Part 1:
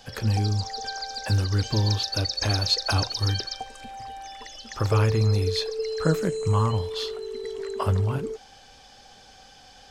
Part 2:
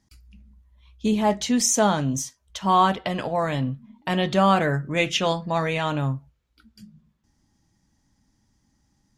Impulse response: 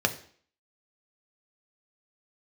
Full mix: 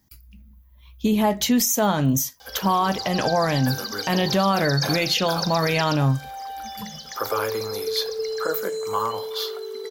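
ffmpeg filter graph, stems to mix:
-filter_complex "[0:a]highpass=530,adelay=2400,volume=1dB,asplit=2[link_01][link_02];[link_02]volume=-13dB[link_03];[1:a]dynaudnorm=framelen=110:gausssize=17:maxgain=7dB,volume=2dB[link_04];[2:a]atrim=start_sample=2205[link_05];[link_03][link_05]afir=irnorm=-1:irlink=0[link_06];[link_01][link_04][link_06]amix=inputs=3:normalize=0,aexciter=amount=12.8:drive=5.2:freq=12000,alimiter=limit=-11.5dB:level=0:latency=1:release=186"

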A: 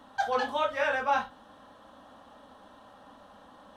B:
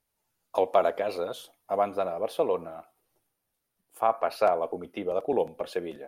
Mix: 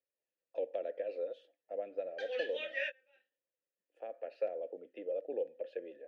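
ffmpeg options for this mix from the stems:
ffmpeg -i stem1.wav -i stem2.wav -filter_complex "[0:a]highpass=150,agate=range=-30dB:threshold=-45dB:ratio=16:detection=peak,highshelf=frequency=1500:width_type=q:width=1.5:gain=12,adelay=2000,volume=-1.5dB[link_01];[1:a]equalizer=frequency=300:width=2.8:gain=8,volume=-3dB,asplit=2[link_02][link_03];[link_03]apad=whole_len=254064[link_04];[link_01][link_04]sidechaingate=range=-32dB:threshold=-52dB:ratio=16:detection=peak[link_05];[link_05][link_02]amix=inputs=2:normalize=0,lowpass=6100,acrossover=split=370|3000[link_06][link_07][link_08];[link_07]acompressor=threshold=-31dB:ratio=2.5[link_09];[link_06][link_09][link_08]amix=inputs=3:normalize=0,asplit=3[link_10][link_11][link_12];[link_10]bandpass=frequency=530:width_type=q:width=8,volume=0dB[link_13];[link_11]bandpass=frequency=1840:width_type=q:width=8,volume=-6dB[link_14];[link_12]bandpass=frequency=2480:width_type=q:width=8,volume=-9dB[link_15];[link_13][link_14][link_15]amix=inputs=3:normalize=0" out.wav

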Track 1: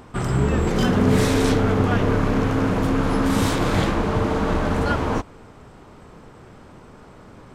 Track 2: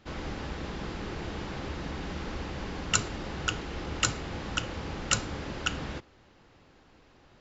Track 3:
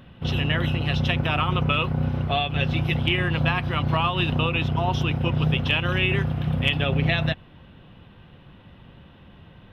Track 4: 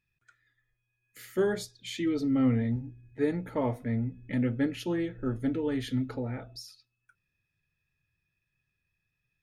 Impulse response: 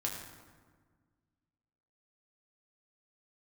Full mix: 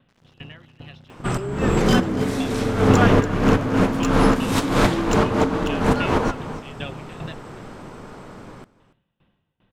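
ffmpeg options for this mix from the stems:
-filter_complex "[0:a]adelay=1100,volume=1.5dB,asplit=2[link_01][link_02];[link_02]volume=-18dB[link_03];[1:a]aeval=exprs='sgn(val(0))*max(abs(val(0))-0.0266,0)':channel_layout=same,volume=-10dB,asplit=2[link_04][link_05];[link_05]volume=-10.5dB[link_06];[2:a]aeval=exprs='val(0)*pow(10,-24*if(lt(mod(2.5*n/s,1),2*abs(2.5)/1000),1-mod(2.5*n/s,1)/(2*abs(2.5)/1000),(mod(2.5*n/s,1)-2*abs(2.5)/1000)/(1-2*abs(2.5)/1000))/20)':channel_layout=same,volume=-11dB,asplit=2[link_07][link_08];[link_08]volume=-19.5dB[link_09];[3:a]asoftclip=type=hard:threshold=-24.5dB,bandpass=frequency=330:width_type=q:width=0.76:csg=0,volume=-4dB,asplit=2[link_10][link_11];[link_11]apad=whole_len=381058[link_12];[link_01][link_12]sidechaincompress=threshold=-43dB:ratio=12:attack=16:release=133[link_13];[link_03][link_06][link_09]amix=inputs=3:normalize=0,aecho=0:1:285:1[link_14];[link_13][link_04][link_07][link_10][link_14]amix=inputs=5:normalize=0,equalizer=frequency=66:width_type=o:width=0.87:gain=-9,dynaudnorm=framelen=240:gausssize=17:maxgain=8dB"

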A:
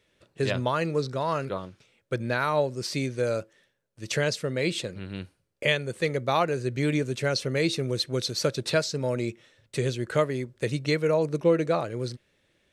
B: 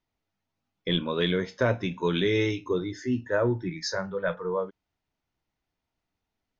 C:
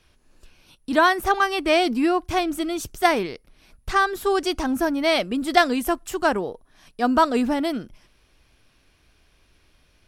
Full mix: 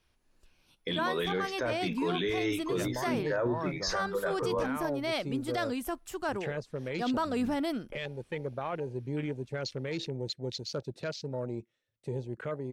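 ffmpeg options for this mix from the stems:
ffmpeg -i stem1.wav -i stem2.wav -i stem3.wav -filter_complex "[0:a]afwtdn=0.0224,alimiter=limit=-18dB:level=0:latency=1:release=12,adelay=2300,volume=-7.5dB[link_01];[1:a]highpass=frequency=240:poles=1,volume=1.5dB[link_02];[2:a]dynaudnorm=framelen=140:gausssize=21:maxgain=11.5dB,volume=-12.5dB[link_03];[link_01][link_02][link_03]amix=inputs=3:normalize=0,alimiter=limit=-22.5dB:level=0:latency=1:release=12" out.wav

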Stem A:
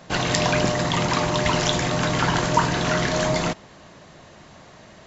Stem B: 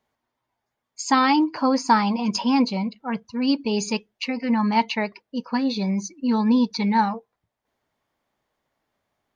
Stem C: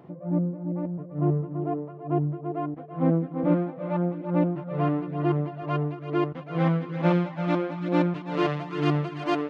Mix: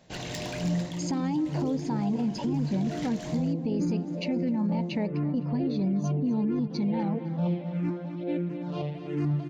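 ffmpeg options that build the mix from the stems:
ffmpeg -i stem1.wav -i stem2.wav -i stem3.wav -filter_complex "[0:a]asoftclip=type=hard:threshold=-17dB,volume=-4dB,afade=type=out:start_time=0.73:duration=0.27:silence=0.375837,afade=type=in:start_time=2.28:duration=0.68:silence=0.421697[link_01];[1:a]tiltshelf=frequency=970:gain=9,acompressor=threshold=-17dB:ratio=6,volume=0.5dB,asplit=2[link_02][link_03];[link_03]volume=-23.5dB[link_04];[2:a]lowshelf=frequency=380:gain=9.5,asplit=2[link_05][link_06];[link_06]afreqshift=-1.5[link_07];[link_05][link_07]amix=inputs=2:normalize=1,adelay=350,volume=-7dB,asplit=2[link_08][link_09];[link_09]volume=-10.5dB[link_10];[link_01][link_02]amix=inputs=2:normalize=0,acompressor=threshold=-24dB:ratio=6,volume=0dB[link_11];[link_04][link_10]amix=inputs=2:normalize=0,aecho=0:1:255|510|765|1020|1275|1530:1|0.43|0.185|0.0795|0.0342|0.0147[link_12];[link_08][link_11][link_12]amix=inputs=3:normalize=0,equalizer=frequency=1200:width_type=o:width=0.8:gain=-10,alimiter=limit=-21dB:level=0:latency=1:release=11" out.wav

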